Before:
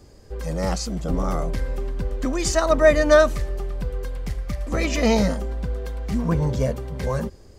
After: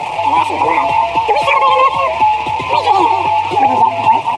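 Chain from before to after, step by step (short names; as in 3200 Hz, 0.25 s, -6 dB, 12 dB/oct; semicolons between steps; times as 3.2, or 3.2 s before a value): delta modulation 32 kbps, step -29.5 dBFS; double band-pass 860 Hz, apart 1.5 oct; on a send: echo 0.341 s -12.5 dB; on the sum: chorus voices 4, 0.33 Hz, delay 12 ms, depth 2.3 ms; in parallel at +2 dB: compressor, threshold -45 dBFS, peak gain reduction 20 dB; on the sum: tilt shelf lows +3.5 dB, about 810 Hz; speed mistake 45 rpm record played at 78 rpm; maximiser +24 dB; record warp 78 rpm, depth 100 cents; gain -1 dB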